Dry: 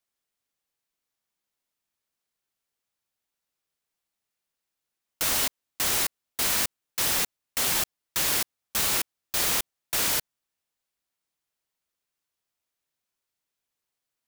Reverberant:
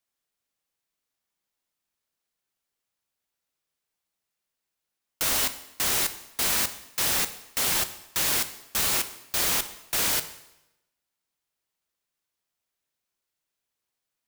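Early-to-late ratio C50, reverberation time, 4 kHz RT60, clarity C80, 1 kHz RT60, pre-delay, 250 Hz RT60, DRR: 13.0 dB, 0.90 s, 0.85 s, 15.5 dB, 0.90 s, 6 ms, 0.90 s, 10.0 dB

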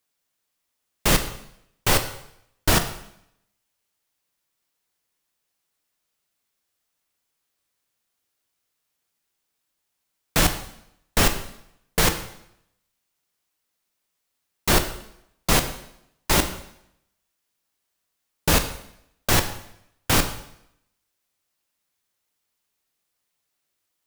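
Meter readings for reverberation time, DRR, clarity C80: 0.75 s, 7.0 dB, 13.0 dB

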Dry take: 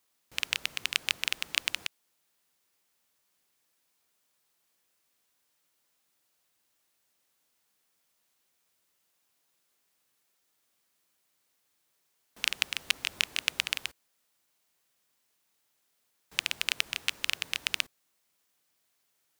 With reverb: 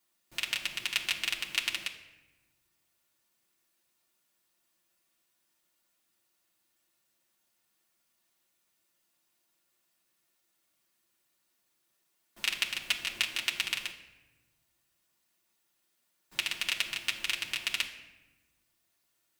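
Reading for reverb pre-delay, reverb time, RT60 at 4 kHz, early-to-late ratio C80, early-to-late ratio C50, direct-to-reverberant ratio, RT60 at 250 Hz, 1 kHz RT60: 3 ms, 1.1 s, 0.70 s, 12.0 dB, 10.0 dB, −2.5 dB, 1.7 s, 1.0 s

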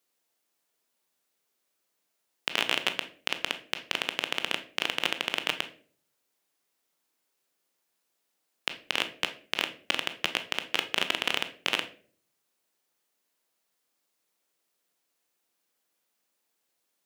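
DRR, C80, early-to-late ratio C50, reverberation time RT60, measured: 8.0 dB, 18.5 dB, 13.5 dB, 0.50 s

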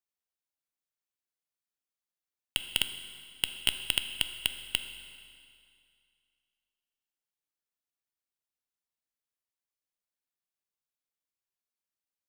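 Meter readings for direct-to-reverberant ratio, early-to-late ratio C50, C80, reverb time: 8.0 dB, 9.0 dB, 10.0 dB, 2.3 s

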